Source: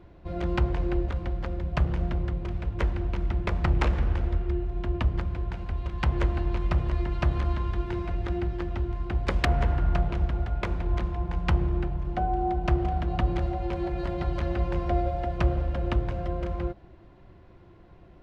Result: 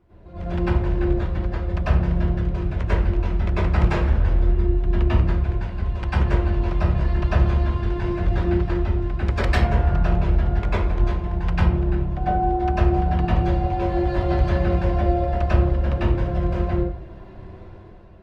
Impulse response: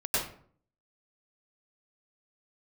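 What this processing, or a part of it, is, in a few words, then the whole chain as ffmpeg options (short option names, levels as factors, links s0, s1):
speakerphone in a meeting room: -filter_complex "[1:a]atrim=start_sample=2205[s0];[0:a][s0]afir=irnorm=-1:irlink=0,dynaudnorm=f=130:g=11:m=4.47,volume=0.501" -ar 48000 -c:a libopus -b:a 32k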